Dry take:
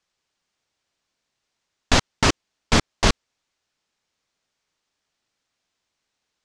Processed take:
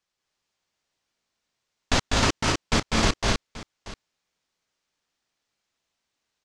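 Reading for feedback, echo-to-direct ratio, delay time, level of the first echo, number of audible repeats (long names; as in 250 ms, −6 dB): repeats not evenly spaced, 0.5 dB, 198 ms, −4.0 dB, 3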